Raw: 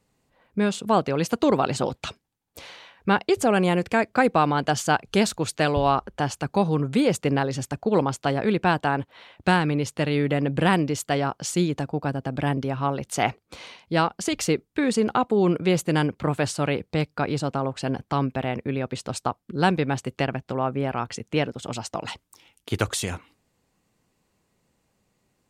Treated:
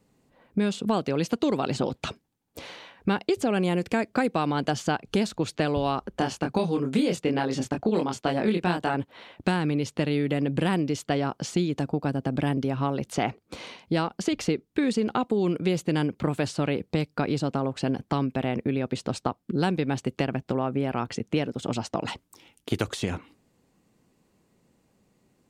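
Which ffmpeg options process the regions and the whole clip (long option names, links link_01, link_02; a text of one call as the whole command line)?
ffmpeg -i in.wav -filter_complex "[0:a]asettb=1/sr,asplit=3[link_01][link_02][link_03];[link_01]atrim=end=6.184[link_04];[link_02]atrim=start=6.18:end=8.94,asetpts=PTS-STARTPTS,afade=type=in:duration=0.004:curve=qsin,afade=type=out:start_time=2.756:duration=0.004:curve=qsin,agate=range=-6dB:threshold=-43dB:ratio=16:release=100:detection=peak,equalizer=frequency=130:width_type=o:width=0.21:gain=-12.5,asplit=2[link_05][link_06];[link_06]adelay=23,volume=-3dB[link_07];[link_05][link_07]amix=inputs=2:normalize=0,atrim=end_sample=121716[link_08];[link_03]atrim=start=8.936[link_09];[link_04][link_08]acrossfade=duration=0.004:curve1=hsin:curve2=qsin[link_10];[link_10][link_09]acrossfade=duration=0.004:curve1=qsin:curve2=hsin,equalizer=frequency=260:width=0.61:gain=7.5,acrossover=split=2300|5400[link_11][link_12][link_13];[link_11]acompressor=threshold=-23dB:ratio=4[link_14];[link_12]acompressor=threshold=-36dB:ratio=4[link_15];[link_13]acompressor=threshold=-47dB:ratio=4[link_16];[link_14][link_15][link_16]amix=inputs=3:normalize=0" out.wav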